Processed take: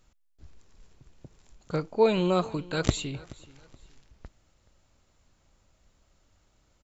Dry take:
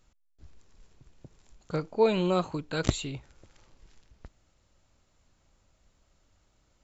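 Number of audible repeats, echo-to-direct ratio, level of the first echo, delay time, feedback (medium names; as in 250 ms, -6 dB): 2, -20.5 dB, -21.0 dB, 426 ms, 32%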